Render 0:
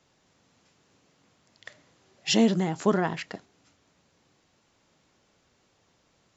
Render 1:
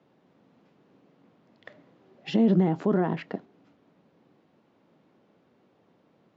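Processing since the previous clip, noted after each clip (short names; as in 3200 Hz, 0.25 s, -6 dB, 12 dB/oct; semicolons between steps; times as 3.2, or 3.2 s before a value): limiter -19.5 dBFS, peak gain reduction 10 dB; Chebyshev band-pass 200–3500 Hz, order 2; tilt shelf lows +9 dB, about 1300 Hz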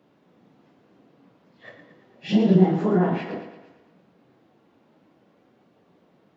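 phase scrambler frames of 0.1 s; thinning echo 0.113 s, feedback 53%, high-pass 160 Hz, level -9.5 dB; on a send at -10 dB: reverb RT60 0.30 s, pre-delay 32 ms; on the sum: gain +3 dB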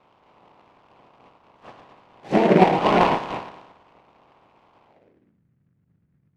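spectral limiter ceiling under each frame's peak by 18 dB; low-pass sweep 1000 Hz -> 150 Hz, 4.84–5.44; noise-modulated delay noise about 1400 Hz, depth 0.063 ms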